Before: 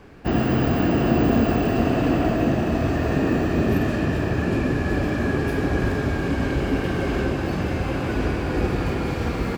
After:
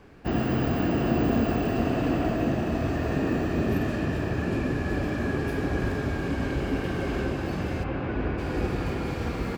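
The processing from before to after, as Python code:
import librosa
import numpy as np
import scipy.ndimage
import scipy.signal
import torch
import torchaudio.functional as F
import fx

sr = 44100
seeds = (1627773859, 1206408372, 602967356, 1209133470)

y = fx.lowpass(x, sr, hz=2600.0, slope=12, at=(7.83, 8.37), fade=0.02)
y = y * librosa.db_to_amplitude(-5.0)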